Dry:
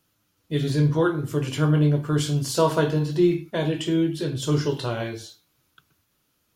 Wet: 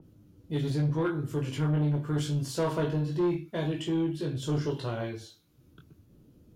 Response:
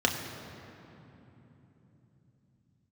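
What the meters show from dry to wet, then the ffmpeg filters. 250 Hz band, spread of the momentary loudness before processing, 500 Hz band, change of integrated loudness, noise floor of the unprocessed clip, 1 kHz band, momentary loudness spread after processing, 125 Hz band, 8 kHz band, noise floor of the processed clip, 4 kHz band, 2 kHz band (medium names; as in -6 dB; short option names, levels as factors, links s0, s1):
-6.5 dB, 8 LU, -8.0 dB, -7.0 dB, -71 dBFS, -8.5 dB, 6 LU, -6.0 dB, -10.0 dB, -61 dBFS, -9.0 dB, -8.5 dB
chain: -filter_complex "[0:a]acrossover=split=450[s0][s1];[s0]acompressor=mode=upward:threshold=0.02:ratio=2.5[s2];[s1]flanger=delay=17.5:depth=6.1:speed=0.8[s3];[s2][s3]amix=inputs=2:normalize=0,asoftclip=type=tanh:threshold=0.126,adynamicequalizer=threshold=0.00447:dfrequency=3600:dqfactor=0.7:tfrequency=3600:tqfactor=0.7:attack=5:release=100:ratio=0.375:range=2.5:mode=cutabove:tftype=highshelf,volume=0.668"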